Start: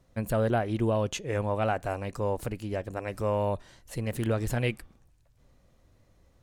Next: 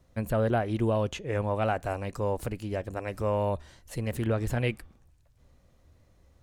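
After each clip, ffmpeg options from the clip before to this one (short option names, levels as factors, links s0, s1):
-filter_complex "[0:a]equalizer=f=75:t=o:w=0.2:g=10.5,acrossover=split=760|3300[s0][s1][s2];[s2]alimiter=level_in=2.82:limit=0.0631:level=0:latency=1:release=455,volume=0.355[s3];[s0][s1][s3]amix=inputs=3:normalize=0"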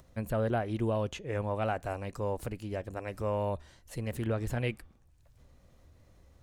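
-af "acompressor=mode=upward:threshold=0.00447:ratio=2.5,volume=0.631"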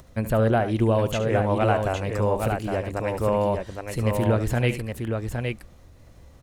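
-af "aecho=1:1:72|814:0.251|0.562,volume=2.82"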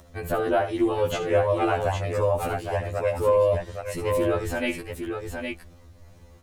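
-af "afftfilt=real='re*2*eq(mod(b,4),0)':imag='im*2*eq(mod(b,4),0)':win_size=2048:overlap=0.75,volume=1.26"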